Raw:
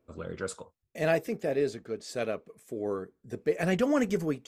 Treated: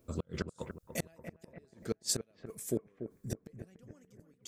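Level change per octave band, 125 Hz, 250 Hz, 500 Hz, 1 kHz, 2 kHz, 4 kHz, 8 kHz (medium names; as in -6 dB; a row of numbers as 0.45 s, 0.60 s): -5.0 dB, -10.5 dB, -14.0 dB, -15.5 dB, -14.0 dB, +0.5 dB, +6.0 dB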